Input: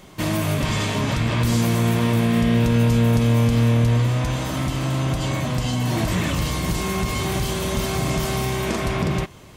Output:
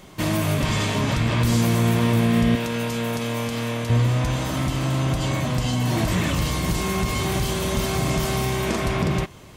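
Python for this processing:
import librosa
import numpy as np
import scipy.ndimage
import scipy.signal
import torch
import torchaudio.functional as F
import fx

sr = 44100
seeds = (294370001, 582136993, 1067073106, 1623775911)

y = fx.highpass(x, sr, hz=530.0, slope=6, at=(2.55, 3.9))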